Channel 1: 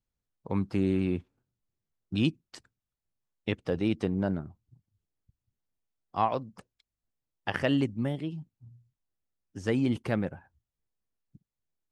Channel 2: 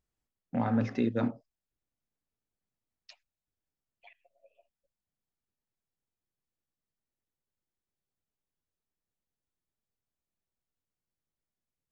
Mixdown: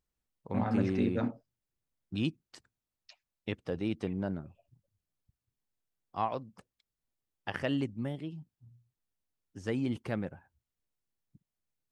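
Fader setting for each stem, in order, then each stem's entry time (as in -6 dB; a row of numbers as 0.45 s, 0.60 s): -5.5 dB, -2.5 dB; 0.00 s, 0.00 s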